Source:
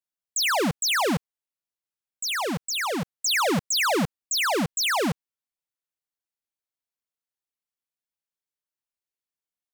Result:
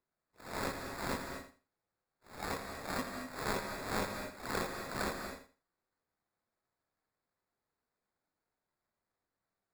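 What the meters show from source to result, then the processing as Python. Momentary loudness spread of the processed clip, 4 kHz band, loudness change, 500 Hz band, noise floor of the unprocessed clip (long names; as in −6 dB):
10 LU, −20.5 dB, −15.0 dB, −12.5 dB, below −85 dBFS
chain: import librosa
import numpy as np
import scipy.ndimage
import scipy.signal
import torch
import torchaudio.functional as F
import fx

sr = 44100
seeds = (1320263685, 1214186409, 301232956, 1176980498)

p1 = fx.hpss_only(x, sr, part='harmonic')
p2 = fx.high_shelf(p1, sr, hz=4800.0, db=-10.0)
p3 = fx.rider(p2, sr, range_db=10, speed_s=0.5)
p4 = p2 + (p3 * librosa.db_to_amplitude(-3.0))
p5 = fx.sample_hold(p4, sr, seeds[0], rate_hz=3000.0, jitter_pct=0)
p6 = p5 + fx.echo_feedback(p5, sr, ms=83, feedback_pct=20, wet_db=-10.0, dry=0)
p7 = fx.rev_gated(p6, sr, seeds[1], gate_ms=270, shape='rising', drr_db=6.0)
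y = p7 * librosa.db_to_amplitude(8.0)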